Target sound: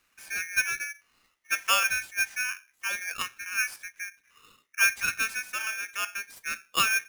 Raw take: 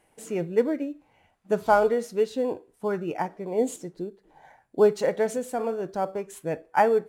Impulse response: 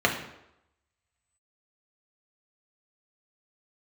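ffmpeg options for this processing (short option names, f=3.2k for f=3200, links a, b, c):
-af "aeval=exprs='val(0)*sgn(sin(2*PI*2000*n/s))':c=same,volume=-4.5dB"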